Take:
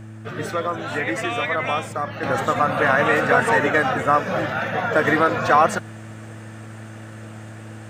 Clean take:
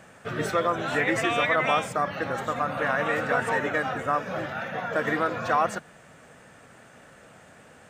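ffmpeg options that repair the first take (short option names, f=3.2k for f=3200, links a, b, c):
-af "bandreject=f=109.2:t=h:w=4,bandreject=f=218.4:t=h:w=4,bandreject=f=327.6:t=h:w=4,asetnsamples=n=441:p=0,asendcmd='2.23 volume volume -8dB',volume=0dB"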